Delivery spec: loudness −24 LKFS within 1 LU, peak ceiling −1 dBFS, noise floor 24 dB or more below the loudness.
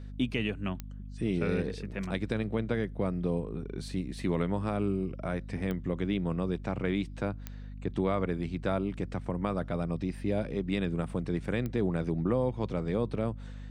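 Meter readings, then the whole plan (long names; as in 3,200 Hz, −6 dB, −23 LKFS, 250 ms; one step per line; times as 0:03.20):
number of clicks 4; mains hum 50 Hz; hum harmonics up to 250 Hz; level of the hum −40 dBFS; integrated loudness −32.5 LKFS; sample peak −15.0 dBFS; target loudness −24.0 LKFS
→ click removal
hum removal 50 Hz, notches 5
level +8.5 dB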